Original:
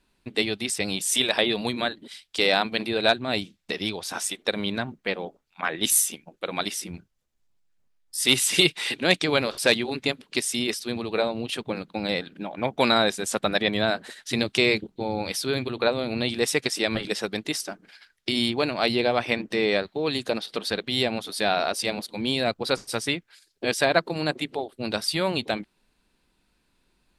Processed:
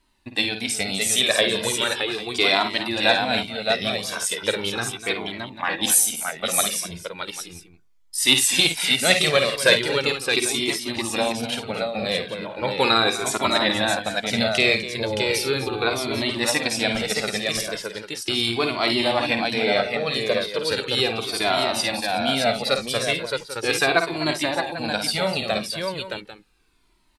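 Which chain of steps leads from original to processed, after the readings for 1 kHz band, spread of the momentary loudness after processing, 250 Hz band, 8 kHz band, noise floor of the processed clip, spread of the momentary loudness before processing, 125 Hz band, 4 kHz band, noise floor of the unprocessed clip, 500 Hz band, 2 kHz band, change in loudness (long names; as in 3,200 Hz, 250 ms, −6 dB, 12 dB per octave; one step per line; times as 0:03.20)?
+4.0 dB, 10 LU, +0.5 dB, +5.0 dB, −55 dBFS, 10 LU, +1.5 dB, +4.5 dB, −70 dBFS, +2.5 dB, +4.5 dB, +3.5 dB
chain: low-shelf EQ 360 Hz −3.5 dB
on a send: multi-tap delay 52/70/250/619/795 ms −8/−15.5/−13.5/−5/−14.5 dB
on the sum: flanger whose copies keep moving one way falling 0.37 Hz
level +7 dB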